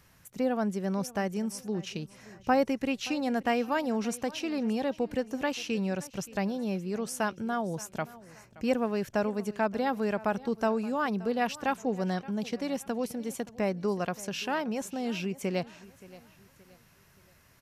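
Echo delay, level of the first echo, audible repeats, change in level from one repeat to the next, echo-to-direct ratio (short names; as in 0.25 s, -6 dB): 0.574 s, -19.5 dB, 2, -8.5 dB, -19.0 dB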